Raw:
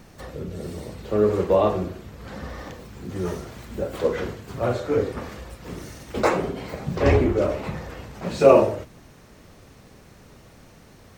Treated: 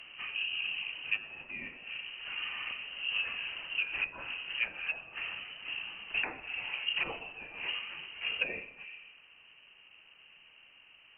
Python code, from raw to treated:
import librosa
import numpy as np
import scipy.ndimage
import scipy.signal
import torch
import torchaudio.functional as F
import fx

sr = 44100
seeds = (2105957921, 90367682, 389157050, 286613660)

p1 = fx.peak_eq(x, sr, hz=240.0, db=7.5, octaves=2.1)
p2 = fx.hum_notches(p1, sr, base_hz=60, count=9)
p3 = p2 + fx.echo_feedback(p2, sr, ms=130, feedback_pct=49, wet_db=-19.0, dry=0)
p4 = fx.rider(p3, sr, range_db=4, speed_s=2.0)
p5 = fx.low_shelf(p4, sr, hz=190.0, db=-6.0)
p6 = fx.freq_invert(p5, sr, carrier_hz=3000)
p7 = fx.env_lowpass_down(p6, sr, base_hz=700.0, full_db=-15.0)
y = p7 * 10.0 ** (-7.0 / 20.0)